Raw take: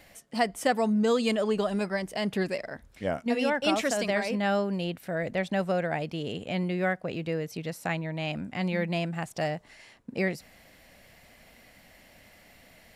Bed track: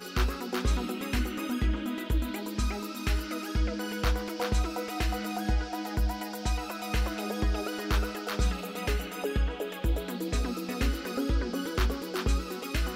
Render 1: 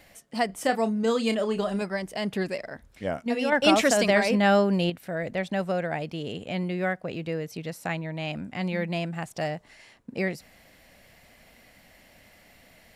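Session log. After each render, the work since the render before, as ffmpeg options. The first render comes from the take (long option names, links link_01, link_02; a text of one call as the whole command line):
ffmpeg -i in.wav -filter_complex "[0:a]asettb=1/sr,asplit=3[link_01][link_02][link_03];[link_01]atrim=end=0.464[link_04];[link_02]atrim=start=0.46:end=1.82,asetpts=PTS-STARTPTS,afade=type=in:duration=0.004:curve=qsin,afade=type=out:start_time=1.356:duration=0.004:curve=qsin,asplit=2[link_05][link_06];[link_06]adelay=31,volume=-10dB[link_07];[link_05][link_07]amix=inputs=2:normalize=0,atrim=end_sample=59976[link_08];[link_03]atrim=start=1.816[link_09];[link_04][link_08]acrossfade=duration=0.004:curve1=hsin:curve2=qsin[link_10];[link_10][link_09]acrossfade=duration=0.004:curve1=qsin:curve2=hsin,asettb=1/sr,asplit=3[link_11][link_12][link_13];[link_11]atrim=end=3.524[link_14];[link_12]atrim=start=3.52:end=4.9,asetpts=PTS-STARTPTS,afade=type=in:duration=0.004:curve=qsin,afade=type=out:start_time=1.376:duration=0.004:curve=qsin,acontrast=64[link_15];[link_13]atrim=start=4.896[link_16];[link_14][link_15]acrossfade=duration=0.004:curve1=hsin:curve2=qsin[link_17];[link_17][link_16]acrossfade=duration=0.004:curve1=qsin:curve2=hsin" out.wav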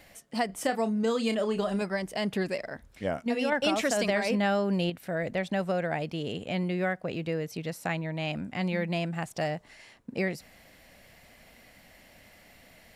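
ffmpeg -i in.wav -af "acompressor=threshold=-24dB:ratio=4" out.wav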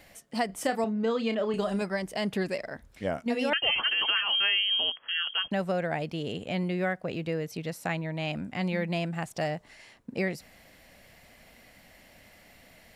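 ffmpeg -i in.wav -filter_complex "[0:a]asettb=1/sr,asplit=3[link_01][link_02][link_03];[link_01]atrim=end=0.844[link_04];[link_02]atrim=start=0.84:end=1.54,asetpts=PTS-STARTPTS,afade=type=in:duration=0.004:curve=qsin,afade=type=out:start_time=0.696:duration=0.004:curve=qsin,highpass=170,lowpass=3600[link_05];[link_03]atrim=start=1.536[link_06];[link_04][link_05]acrossfade=duration=0.004:curve1=hsin:curve2=qsin[link_07];[link_07][link_06]acrossfade=duration=0.004:curve1=qsin:curve2=hsin,asettb=1/sr,asplit=3[link_08][link_09][link_10];[link_08]atrim=end=3.534[link_11];[link_09]atrim=start=3.53:end=5.51,asetpts=PTS-STARTPTS,afade=type=in:duration=0.004:curve=qsin,afade=type=out:start_time=1.976:duration=0.004:curve=qsin,lowpass=frequency=2900:width_type=q:width=0.5098,lowpass=frequency=2900:width_type=q:width=0.6013,lowpass=frequency=2900:width_type=q:width=0.9,lowpass=frequency=2900:width_type=q:width=2.563,afreqshift=-3400[link_12];[link_10]atrim=start=5.506[link_13];[link_11][link_12]acrossfade=duration=0.004:curve1=hsin:curve2=qsin[link_14];[link_14][link_13]acrossfade=duration=0.004:curve1=qsin:curve2=hsin" out.wav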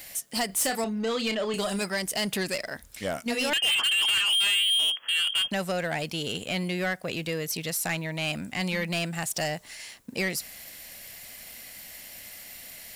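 ffmpeg -i in.wav -af "crystalizer=i=7:c=0,asoftclip=type=tanh:threshold=-21.5dB" out.wav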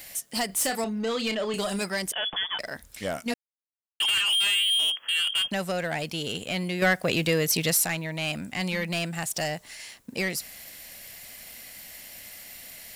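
ffmpeg -i in.wav -filter_complex "[0:a]asettb=1/sr,asplit=3[link_01][link_02][link_03];[link_01]atrim=end=2.124[link_04];[link_02]atrim=start=2.12:end=2.59,asetpts=PTS-STARTPTS,afade=type=in:duration=0.004:curve=qsin,afade=type=out:start_time=0.466:duration=0.004:curve=qsin,lowpass=frequency=3100:width_type=q:width=0.5098,lowpass=frequency=3100:width_type=q:width=0.6013,lowpass=frequency=3100:width_type=q:width=0.9,lowpass=frequency=3100:width_type=q:width=2.563,afreqshift=-3600[link_05];[link_03]atrim=start=2.586[link_06];[link_04][link_05]acrossfade=duration=0.004:curve1=hsin:curve2=qsin[link_07];[link_07][link_06]acrossfade=duration=0.004:curve1=qsin:curve2=hsin,asplit=5[link_08][link_09][link_10][link_11][link_12];[link_08]atrim=end=3.34,asetpts=PTS-STARTPTS,afade=type=out:start_time=3.336:duration=0.004:curve=hsin[link_13];[link_09]atrim=start=3.34:end=4,asetpts=PTS-STARTPTS,volume=0[link_14];[link_10]atrim=start=4:end=6.822,asetpts=PTS-STARTPTS,afade=type=in:duration=0.004:curve=hsin[link_15];[link_11]atrim=start=6.818:end=7.852,asetpts=PTS-STARTPTS,volume=7dB[link_16];[link_12]atrim=start=7.848[link_17];[link_13][link_14][link_15]concat=n=3:v=0:a=1[link_18];[link_18][link_16]acrossfade=duration=0.004:curve1=hsin:curve2=hsin[link_19];[link_19][link_17]acrossfade=duration=0.004:curve1=hsin:curve2=hsin" out.wav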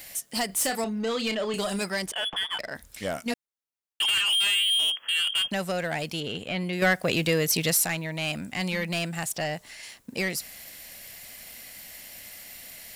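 ffmpeg -i in.wav -filter_complex "[0:a]asettb=1/sr,asplit=3[link_01][link_02][link_03];[link_01]atrim=end=2.064[link_04];[link_02]atrim=start=2.06:end=2.75,asetpts=PTS-STARTPTS,afade=type=in:duration=0.004:curve=qsin,afade=type=out:start_time=0.686:duration=0.004:curve=qsin,adynamicsmooth=sensitivity=8:basefreq=4400[link_05];[link_03]atrim=start=2.746[link_06];[link_04][link_05]acrossfade=duration=0.004:curve1=hsin:curve2=qsin[link_07];[link_07][link_06]acrossfade=duration=0.004:curve1=qsin:curve2=hsin,asettb=1/sr,asplit=3[link_08][link_09][link_10];[link_08]atrim=end=6.204[link_11];[link_09]atrim=start=6.2:end=6.73,asetpts=PTS-STARTPTS,afade=type=in:duration=0.004:curve=qsin,afade=type=out:start_time=0.526:duration=0.004:curve=qsin,acrossover=split=4000[link_12][link_13];[link_13]acompressor=threshold=-53dB:ratio=4:attack=1:release=60[link_14];[link_12][link_14]amix=inputs=2:normalize=0[link_15];[link_10]atrim=start=6.726[link_16];[link_11][link_15]acrossfade=duration=0.004:curve1=hsin:curve2=qsin[link_17];[link_17][link_16]acrossfade=duration=0.004:curve1=qsin:curve2=hsin,asettb=1/sr,asplit=3[link_18][link_19][link_20];[link_18]atrim=end=9.364[link_21];[link_19]atrim=start=9.36:end=9.83,asetpts=PTS-STARTPTS,afade=type=in:duration=0.004:curve=qsin,afade=type=out:start_time=0.466:duration=0.004:curve=qsin,acrossover=split=4500[link_22][link_23];[link_23]acompressor=threshold=-47dB:ratio=4:attack=1:release=60[link_24];[link_22][link_24]amix=inputs=2:normalize=0[link_25];[link_20]atrim=start=9.826[link_26];[link_21][link_25]acrossfade=duration=0.004:curve1=hsin:curve2=qsin[link_27];[link_27][link_26]acrossfade=duration=0.004:curve1=qsin:curve2=hsin" out.wav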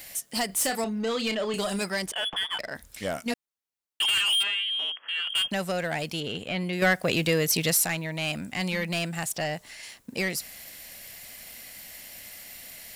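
ffmpeg -i in.wav -filter_complex "[0:a]asplit=3[link_01][link_02][link_03];[link_01]afade=type=out:start_time=4.42:duration=0.02[link_04];[link_02]highpass=240,lowpass=2500,afade=type=in:start_time=4.42:duration=0.02,afade=type=out:start_time=5.29:duration=0.02[link_05];[link_03]afade=type=in:start_time=5.29:duration=0.02[link_06];[link_04][link_05][link_06]amix=inputs=3:normalize=0" out.wav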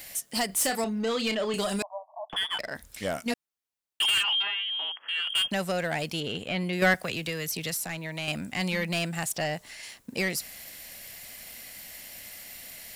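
ffmpeg -i in.wav -filter_complex "[0:a]asettb=1/sr,asplit=3[link_01][link_02][link_03];[link_01]atrim=end=1.824[link_04];[link_02]atrim=start=1.82:end=2.3,asetpts=PTS-STARTPTS,afade=type=in:duration=0.004:curve=qsin,afade=type=out:start_time=0.476:duration=0.004:curve=qsin,asuperpass=centerf=810:order=20:qfactor=1.6[link_05];[link_03]atrim=start=2.296[link_06];[link_04][link_05]acrossfade=duration=0.004:curve1=hsin:curve2=qsin[link_07];[link_07][link_06]acrossfade=duration=0.004:curve1=qsin:curve2=hsin,asplit=3[link_08][link_09][link_10];[link_08]afade=type=out:start_time=4.22:duration=0.02[link_11];[link_09]highpass=150,equalizer=frequency=250:width_type=q:width=4:gain=-7,equalizer=frequency=500:width_type=q:width=4:gain=-7,equalizer=frequency=870:width_type=q:width=4:gain=10,equalizer=frequency=2500:width_type=q:width=4:gain=-4,lowpass=frequency=3500:width=0.5412,lowpass=frequency=3500:width=1.3066,afade=type=in:start_time=4.22:duration=0.02,afade=type=out:start_time=4.99:duration=0.02[link_12];[link_10]afade=type=in:start_time=4.99:duration=0.02[link_13];[link_11][link_12][link_13]amix=inputs=3:normalize=0,asettb=1/sr,asplit=3[link_14][link_15][link_16];[link_14]atrim=end=6.944[link_17];[link_15]atrim=start=6.94:end=8.28,asetpts=PTS-STARTPTS,afade=type=in:duration=0.004:curve=qsin,afade=type=out:start_time=1.336:duration=0.004:curve=qsin,acrossover=split=130|270|1000[link_18][link_19][link_20][link_21];[link_18]acompressor=threshold=-45dB:ratio=3[link_22];[link_19]acompressor=threshold=-46dB:ratio=3[link_23];[link_20]acompressor=threshold=-41dB:ratio=3[link_24];[link_21]acompressor=threshold=-33dB:ratio=3[link_25];[link_22][link_23][link_24][link_25]amix=inputs=4:normalize=0[link_26];[link_16]atrim=start=8.276[link_27];[link_17][link_26]acrossfade=duration=0.004:curve1=hsin:curve2=qsin[link_28];[link_28][link_27]acrossfade=duration=0.004:curve1=qsin:curve2=hsin" out.wav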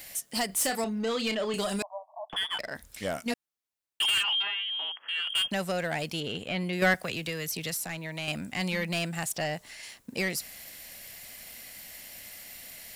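ffmpeg -i in.wav -af "volume=-1.5dB" out.wav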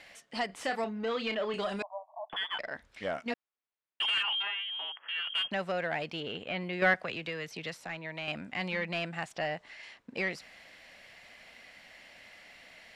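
ffmpeg -i in.wav -af "lowpass=2700,lowshelf=frequency=250:gain=-10.5" out.wav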